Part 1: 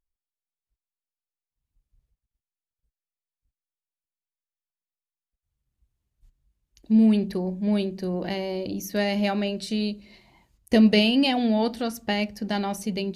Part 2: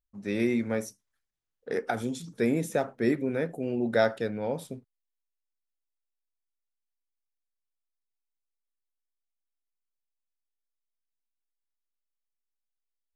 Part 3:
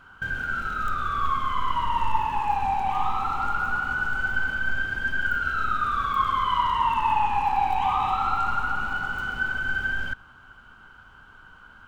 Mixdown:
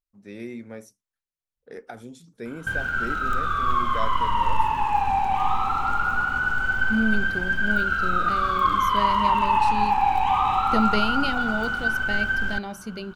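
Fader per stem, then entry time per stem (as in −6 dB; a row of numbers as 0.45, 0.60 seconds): −6.0, −9.5, +2.5 decibels; 0.00, 0.00, 2.45 seconds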